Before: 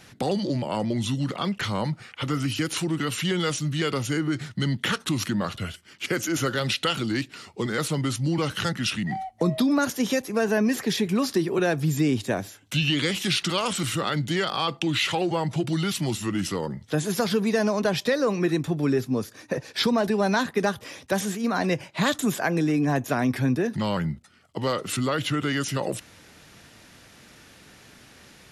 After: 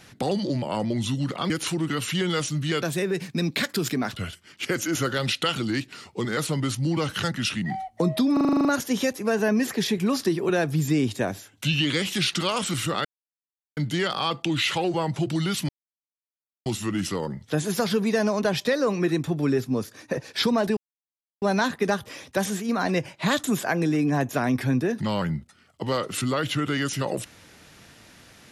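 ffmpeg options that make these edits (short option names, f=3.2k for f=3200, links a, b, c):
-filter_complex "[0:a]asplit=15[a][b][c][d][e][f][g][h][i][j][k][l][m][n][o];[a]atrim=end=1.502[p];[b]atrim=start=2.598:end=3.924[q];[c]atrim=start=3.92:end=5.53,asetpts=PTS-STARTPTS,asetrate=54684,aresample=44100[r];[d]atrim=start=5.526:end=9.782[s];[e]atrim=start=9.738:end=9.782[t];[f]atrim=start=9.738:end=9.782[u];[g]atrim=start=9.738:end=9.782[v];[h]atrim=start=9.738:end=9.782[w];[i]atrim=start=9.738:end=9.782[x];[j]atrim=start=9.738:end=9.782[y];[k]atrim=start=9.738:end=9.782[z];[l]atrim=start=9.738:end=14.14,asetpts=PTS-STARTPTS,afade=t=out:st=4.398:d=0.004:c=hsin,apad=pad_dur=0.72[aa];[m]atrim=start=14.14:end=16.06,asetpts=PTS-STARTPTS,afade=t=in:d=0.004:c=hsin,afade=t=out:st=1.916:d=0.004:c=hsin,apad=pad_dur=0.97[ab];[n]atrim=start=16.06:end=20.17,asetpts=PTS-STARTPTS,afade=t=in:d=0.004:c=hsin,afade=t=out:st=4.106:d=0.004:c=hsin,apad=pad_dur=0.65[ac];[o]atrim=start=20.17,asetpts=PTS-STARTPTS,afade=t=in:d=0.004:c=hsin[ad];[p][q]acrossfade=d=0.004:c1=hsin:c2=hsin[ae];[ae][r]acrossfade=d=0.004:c1=hsin:c2=hsin[af];[af][s]acrossfade=d=0.004:c1=hsin:c2=hsin[ag];[ag][t]acrossfade=d=0.004:c1=hsin:c2=hsin[ah];[ah][u]acrossfade=d=0.004:c1=hsin:c2=hsin[ai];[ai][v]acrossfade=d=0.004:c1=hsin:c2=hsin[aj];[aj][w]acrossfade=d=0.004:c1=hsin:c2=hsin[ak];[ak][x]acrossfade=d=0.004:c1=hsin:c2=hsin[al];[al][y]acrossfade=d=0.004:c1=hsin:c2=hsin[am];[am][z]acrossfade=d=0.004:c1=hsin:c2=hsin[an];[aa][ab][ac][ad]concat=n=4:v=0:a=1[ao];[an][ao]acrossfade=d=0.004:c1=hsin:c2=hsin"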